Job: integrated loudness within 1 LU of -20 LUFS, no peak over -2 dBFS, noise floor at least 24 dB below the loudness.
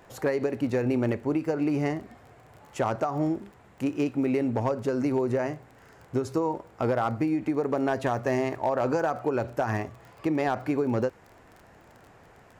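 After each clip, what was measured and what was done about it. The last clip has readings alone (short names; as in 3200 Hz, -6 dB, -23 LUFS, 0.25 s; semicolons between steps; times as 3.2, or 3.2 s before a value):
ticks 23/s; loudness -28.0 LUFS; peak -16.5 dBFS; loudness target -20.0 LUFS
-> de-click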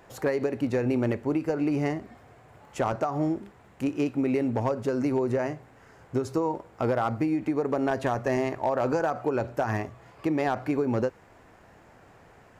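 ticks 0/s; loudness -28.0 LUFS; peak -16.5 dBFS; loudness target -20.0 LUFS
-> gain +8 dB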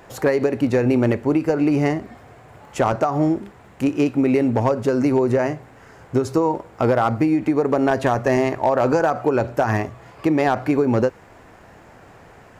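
loudness -20.0 LUFS; peak -8.5 dBFS; noise floor -47 dBFS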